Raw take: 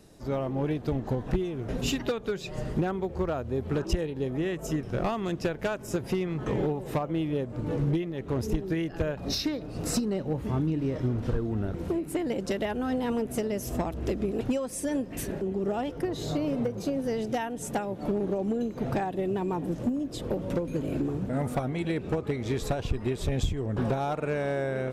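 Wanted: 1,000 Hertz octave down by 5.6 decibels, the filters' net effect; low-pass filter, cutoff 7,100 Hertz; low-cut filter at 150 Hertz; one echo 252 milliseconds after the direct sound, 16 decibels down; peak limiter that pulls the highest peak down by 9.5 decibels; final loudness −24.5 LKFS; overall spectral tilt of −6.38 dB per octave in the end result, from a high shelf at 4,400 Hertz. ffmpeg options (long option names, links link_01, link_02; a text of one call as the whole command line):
ffmpeg -i in.wav -af "highpass=150,lowpass=7100,equalizer=frequency=1000:width_type=o:gain=-8,highshelf=frequency=4400:gain=-7.5,alimiter=level_in=3.5dB:limit=-24dB:level=0:latency=1,volume=-3.5dB,aecho=1:1:252:0.158,volume=11.5dB" out.wav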